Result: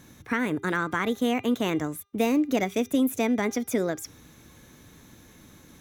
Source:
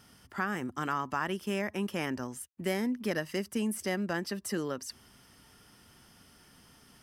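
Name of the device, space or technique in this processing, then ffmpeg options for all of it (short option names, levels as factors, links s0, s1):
nightcore: -af "lowshelf=f=390:g=7.5,bandreject=f=331.6:t=h:w=4,bandreject=f=663.2:t=h:w=4,bandreject=f=994.8:t=h:w=4,bandreject=f=1326.4:t=h:w=4,bandreject=f=1658:t=h:w=4,bandreject=f=1989.6:t=h:w=4,bandreject=f=2321.2:t=h:w=4,bandreject=f=2652.8:t=h:w=4,bandreject=f=2984.4:t=h:w=4,bandreject=f=3316:t=h:w=4,bandreject=f=3647.6:t=h:w=4,bandreject=f=3979.2:t=h:w=4,bandreject=f=4310.8:t=h:w=4,bandreject=f=4642.4:t=h:w=4,bandreject=f=4974:t=h:w=4,asetrate=53361,aresample=44100,volume=1.5"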